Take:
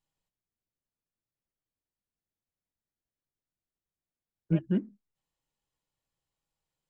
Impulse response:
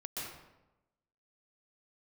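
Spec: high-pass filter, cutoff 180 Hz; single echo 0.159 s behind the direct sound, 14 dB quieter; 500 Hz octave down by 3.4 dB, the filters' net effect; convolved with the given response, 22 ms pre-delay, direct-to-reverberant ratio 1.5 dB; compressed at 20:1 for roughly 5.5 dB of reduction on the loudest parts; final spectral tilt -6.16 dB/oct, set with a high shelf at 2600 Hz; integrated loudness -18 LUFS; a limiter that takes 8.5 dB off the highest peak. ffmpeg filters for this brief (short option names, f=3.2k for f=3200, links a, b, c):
-filter_complex "[0:a]highpass=180,equalizer=f=500:t=o:g=-5,highshelf=f=2.6k:g=-8,acompressor=threshold=-30dB:ratio=20,alimiter=level_in=9dB:limit=-24dB:level=0:latency=1,volume=-9dB,aecho=1:1:159:0.2,asplit=2[a][b];[1:a]atrim=start_sample=2205,adelay=22[c];[b][c]afir=irnorm=-1:irlink=0,volume=-2.5dB[d];[a][d]amix=inputs=2:normalize=0,volume=25.5dB"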